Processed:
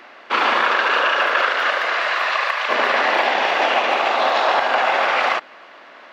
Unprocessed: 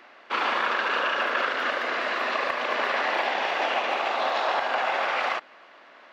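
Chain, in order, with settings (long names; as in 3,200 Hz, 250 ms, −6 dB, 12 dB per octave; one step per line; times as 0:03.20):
0:00.63–0:02.68: high-pass filter 260 Hz → 980 Hz 12 dB per octave
level +8 dB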